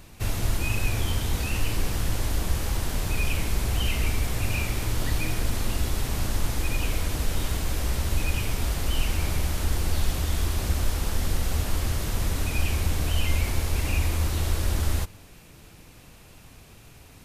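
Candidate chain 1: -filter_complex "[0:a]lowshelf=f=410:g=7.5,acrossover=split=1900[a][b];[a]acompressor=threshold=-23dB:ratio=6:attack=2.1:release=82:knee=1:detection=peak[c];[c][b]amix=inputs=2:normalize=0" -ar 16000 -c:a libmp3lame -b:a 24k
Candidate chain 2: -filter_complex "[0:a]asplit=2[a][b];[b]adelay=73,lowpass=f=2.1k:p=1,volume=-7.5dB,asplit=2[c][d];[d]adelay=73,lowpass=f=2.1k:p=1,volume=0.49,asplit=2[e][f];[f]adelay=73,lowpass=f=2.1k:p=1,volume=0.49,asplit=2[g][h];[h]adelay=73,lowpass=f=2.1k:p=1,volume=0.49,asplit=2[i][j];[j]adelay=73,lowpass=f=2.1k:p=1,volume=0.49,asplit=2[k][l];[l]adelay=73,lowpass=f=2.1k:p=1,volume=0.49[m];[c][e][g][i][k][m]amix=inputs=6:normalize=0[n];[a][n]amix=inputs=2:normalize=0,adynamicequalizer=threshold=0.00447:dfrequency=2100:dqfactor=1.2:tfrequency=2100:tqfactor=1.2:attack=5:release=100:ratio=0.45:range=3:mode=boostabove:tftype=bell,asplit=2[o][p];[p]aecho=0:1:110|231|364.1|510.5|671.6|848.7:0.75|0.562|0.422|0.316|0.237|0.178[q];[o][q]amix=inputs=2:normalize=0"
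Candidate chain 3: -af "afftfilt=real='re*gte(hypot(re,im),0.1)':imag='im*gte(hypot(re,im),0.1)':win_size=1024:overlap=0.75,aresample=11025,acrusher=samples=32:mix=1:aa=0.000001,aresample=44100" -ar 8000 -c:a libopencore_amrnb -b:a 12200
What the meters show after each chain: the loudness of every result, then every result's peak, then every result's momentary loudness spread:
-30.5, -23.5, -34.0 LUFS; -16.5, -6.0, -15.0 dBFS; 17, 3, 4 LU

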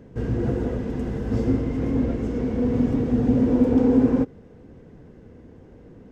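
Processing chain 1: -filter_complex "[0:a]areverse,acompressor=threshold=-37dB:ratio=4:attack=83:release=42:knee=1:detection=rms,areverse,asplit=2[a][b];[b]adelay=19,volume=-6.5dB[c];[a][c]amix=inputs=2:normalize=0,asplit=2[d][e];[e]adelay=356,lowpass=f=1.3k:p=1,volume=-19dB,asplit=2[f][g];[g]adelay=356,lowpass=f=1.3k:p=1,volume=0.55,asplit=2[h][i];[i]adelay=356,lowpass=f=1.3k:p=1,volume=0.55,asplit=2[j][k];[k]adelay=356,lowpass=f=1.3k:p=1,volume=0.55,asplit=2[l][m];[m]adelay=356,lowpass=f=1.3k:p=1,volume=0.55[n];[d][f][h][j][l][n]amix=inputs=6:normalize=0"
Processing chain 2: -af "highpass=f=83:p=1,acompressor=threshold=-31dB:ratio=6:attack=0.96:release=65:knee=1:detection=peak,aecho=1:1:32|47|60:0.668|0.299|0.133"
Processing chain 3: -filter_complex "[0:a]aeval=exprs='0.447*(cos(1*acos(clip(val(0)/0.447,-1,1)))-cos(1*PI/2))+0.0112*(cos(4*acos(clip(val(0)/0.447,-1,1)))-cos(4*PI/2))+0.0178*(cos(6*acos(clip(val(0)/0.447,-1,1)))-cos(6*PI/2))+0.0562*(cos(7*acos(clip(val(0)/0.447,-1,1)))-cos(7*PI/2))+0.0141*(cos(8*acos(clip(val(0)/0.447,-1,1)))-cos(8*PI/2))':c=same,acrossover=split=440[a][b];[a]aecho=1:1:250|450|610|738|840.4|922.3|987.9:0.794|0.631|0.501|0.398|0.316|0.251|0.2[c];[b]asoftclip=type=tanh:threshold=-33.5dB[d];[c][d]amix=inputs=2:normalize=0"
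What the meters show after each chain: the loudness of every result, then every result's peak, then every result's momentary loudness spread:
-32.5, -33.0, -22.5 LUFS; -20.0, -21.0, -6.5 dBFS; 16, 16, 14 LU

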